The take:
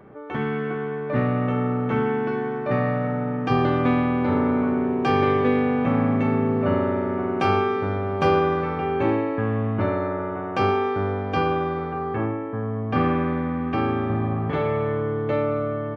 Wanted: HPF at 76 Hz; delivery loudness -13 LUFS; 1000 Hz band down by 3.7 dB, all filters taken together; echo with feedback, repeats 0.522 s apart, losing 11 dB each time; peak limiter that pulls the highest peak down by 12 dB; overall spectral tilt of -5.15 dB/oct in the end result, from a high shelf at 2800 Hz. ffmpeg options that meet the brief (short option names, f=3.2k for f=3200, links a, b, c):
-af "highpass=76,equalizer=f=1k:t=o:g=-6,highshelf=f=2.8k:g=6.5,alimiter=limit=-21.5dB:level=0:latency=1,aecho=1:1:522|1044|1566:0.282|0.0789|0.0221,volume=16dB"